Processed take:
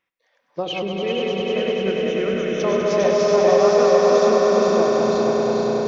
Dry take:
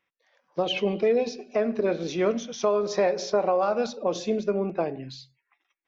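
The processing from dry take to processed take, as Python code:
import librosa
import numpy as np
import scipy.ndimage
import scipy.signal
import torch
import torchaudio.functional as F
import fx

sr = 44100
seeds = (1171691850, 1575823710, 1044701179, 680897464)

y = fx.reverse_delay_fb(x, sr, ms=234, feedback_pct=75, wet_db=-2.5)
y = fx.fixed_phaser(y, sr, hz=1900.0, stages=4, at=(0.83, 2.6))
y = fx.echo_swell(y, sr, ms=100, loudest=5, wet_db=-6.5)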